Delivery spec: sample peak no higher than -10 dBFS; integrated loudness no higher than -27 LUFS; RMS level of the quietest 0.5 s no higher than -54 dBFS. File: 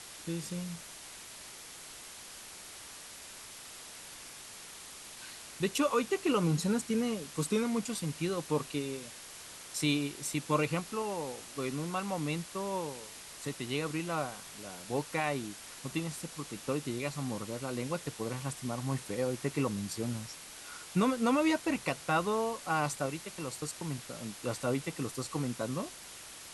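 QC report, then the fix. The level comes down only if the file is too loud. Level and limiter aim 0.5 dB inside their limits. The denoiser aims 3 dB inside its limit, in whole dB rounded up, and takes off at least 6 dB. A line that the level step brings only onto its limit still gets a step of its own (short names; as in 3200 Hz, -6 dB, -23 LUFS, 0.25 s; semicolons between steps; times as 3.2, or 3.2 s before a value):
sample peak -16.0 dBFS: OK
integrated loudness -34.5 LUFS: OK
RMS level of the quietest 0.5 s -48 dBFS: fail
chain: denoiser 9 dB, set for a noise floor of -48 dBFS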